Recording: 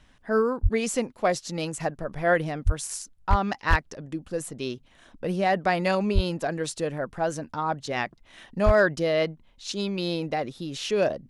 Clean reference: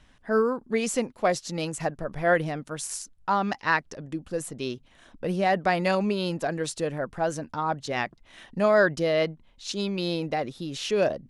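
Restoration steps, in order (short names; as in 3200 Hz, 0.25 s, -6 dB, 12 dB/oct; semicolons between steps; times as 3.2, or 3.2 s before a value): clip repair -11 dBFS; de-plosive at 0.62/2.65/3.29/3.69/6.14/8.65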